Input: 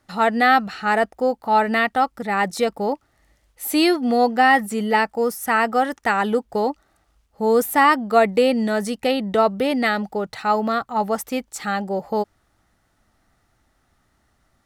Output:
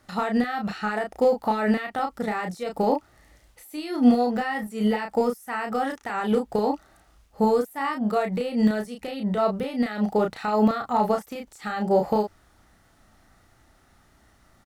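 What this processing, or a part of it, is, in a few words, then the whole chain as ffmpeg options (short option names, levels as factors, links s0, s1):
de-esser from a sidechain: -filter_complex "[0:a]asplit=2[s0][s1];[s1]highpass=5700,apad=whole_len=646138[s2];[s0][s2]sidechaincompress=threshold=0.00282:ratio=8:attack=0.52:release=76,asplit=2[s3][s4];[s4]adelay=33,volume=0.631[s5];[s3][s5]amix=inputs=2:normalize=0,volume=1.68"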